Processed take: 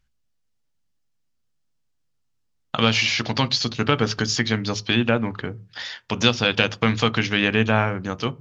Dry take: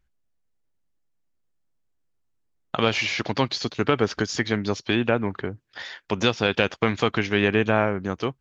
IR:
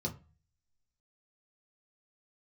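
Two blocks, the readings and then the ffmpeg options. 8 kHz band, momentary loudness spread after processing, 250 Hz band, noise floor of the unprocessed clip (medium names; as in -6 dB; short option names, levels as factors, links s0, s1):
no reading, 11 LU, +2.0 dB, -71 dBFS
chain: -filter_complex "[0:a]equalizer=f=4300:w=0.6:g=7.5,asplit=2[s0][s1];[1:a]atrim=start_sample=2205,lowpass=3900[s2];[s1][s2]afir=irnorm=-1:irlink=0,volume=0.2[s3];[s0][s3]amix=inputs=2:normalize=0"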